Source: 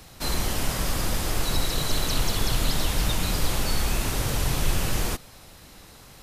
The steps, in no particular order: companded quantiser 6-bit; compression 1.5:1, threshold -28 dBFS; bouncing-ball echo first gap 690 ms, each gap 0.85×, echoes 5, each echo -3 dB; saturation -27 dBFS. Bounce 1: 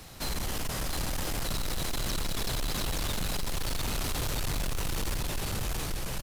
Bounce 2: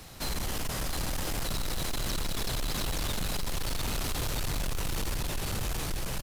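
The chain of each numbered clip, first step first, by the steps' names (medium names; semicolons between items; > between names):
compression > bouncing-ball echo > saturation > companded quantiser; bouncing-ball echo > compression > saturation > companded quantiser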